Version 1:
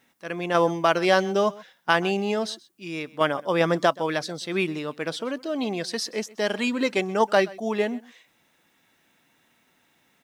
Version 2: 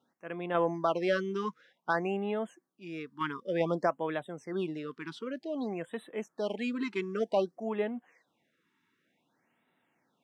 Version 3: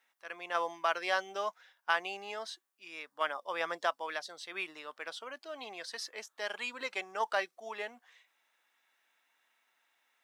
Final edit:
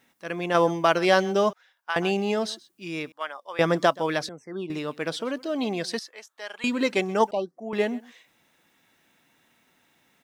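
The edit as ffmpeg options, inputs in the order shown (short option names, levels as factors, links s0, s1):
-filter_complex "[2:a]asplit=3[s0][s1][s2];[1:a]asplit=2[s3][s4];[0:a]asplit=6[s5][s6][s7][s8][s9][s10];[s5]atrim=end=1.532[s11];[s0]atrim=start=1.528:end=1.962[s12];[s6]atrim=start=1.958:end=3.122[s13];[s1]atrim=start=3.118:end=3.592[s14];[s7]atrim=start=3.588:end=4.292[s15];[s3]atrim=start=4.288:end=4.702[s16];[s8]atrim=start=4.698:end=5.992[s17];[s2]atrim=start=5.988:end=6.642[s18];[s9]atrim=start=6.638:end=7.312[s19];[s4]atrim=start=7.308:end=7.732[s20];[s10]atrim=start=7.728[s21];[s11][s12]acrossfade=d=0.004:c1=hsin:c2=hsin[s22];[s22][s13]acrossfade=d=0.004:c1=hsin:c2=hsin[s23];[s23][s14]acrossfade=d=0.004:c1=hsin:c2=hsin[s24];[s24][s15]acrossfade=d=0.004:c1=hsin:c2=hsin[s25];[s25][s16]acrossfade=d=0.004:c1=hsin:c2=hsin[s26];[s26][s17]acrossfade=d=0.004:c1=hsin:c2=hsin[s27];[s27][s18]acrossfade=d=0.004:c1=hsin:c2=hsin[s28];[s28][s19]acrossfade=d=0.004:c1=hsin:c2=hsin[s29];[s29][s20]acrossfade=d=0.004:c1=hsin:c2=hsin[s30];[s30][s21]acrossfade=d=0.004:c1=hsin:c2=hsin"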